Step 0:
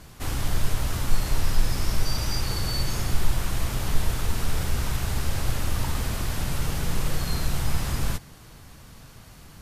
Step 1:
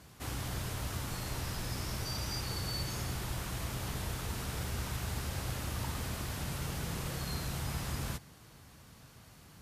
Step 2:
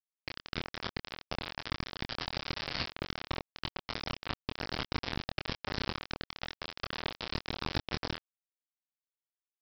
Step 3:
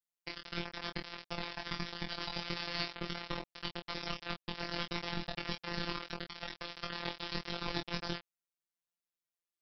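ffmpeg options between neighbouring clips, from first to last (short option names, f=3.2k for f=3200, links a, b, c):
-af "highpass=64,volume=-7.5dB"
-filter_complex "[0:a]aresample=11025,acrusher=bits=4:mix=0:aa=0.000001,aresample=44100,asplit=2[a][b];[b]adelay=25,volume=-5.5dB[c];[a][c]amix=inputs=2:normalize=0,volume=2dB"
-af "flanger=delay=19.5:depth=2.5:speed=1.6,afftfilt=real='hypot(re,im)*cos(PI*b)':imag='0':win_size=1024:overlap=0.75,volume=5dB"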